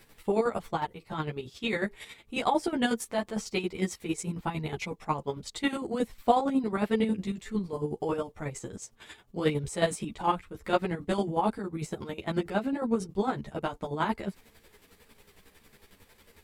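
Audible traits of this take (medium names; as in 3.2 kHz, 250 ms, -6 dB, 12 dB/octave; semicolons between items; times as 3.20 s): chopped level 11 Hz, depth 60%, duty 35%; a shimmering, thickened sound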